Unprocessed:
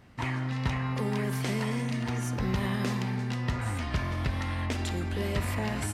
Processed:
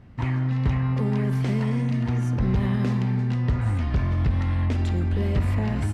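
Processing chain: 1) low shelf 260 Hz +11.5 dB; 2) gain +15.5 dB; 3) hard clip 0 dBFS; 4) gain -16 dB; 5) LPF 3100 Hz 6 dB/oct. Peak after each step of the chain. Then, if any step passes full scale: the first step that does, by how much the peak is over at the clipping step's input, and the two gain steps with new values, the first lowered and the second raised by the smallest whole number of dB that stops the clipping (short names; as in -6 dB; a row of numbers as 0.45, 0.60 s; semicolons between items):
-9.5, +6.0, 0.0, -16.0, -16.0 dBFS; step 2, 6.0 dB; step 2 +9.5 dB, step 4 -10 dB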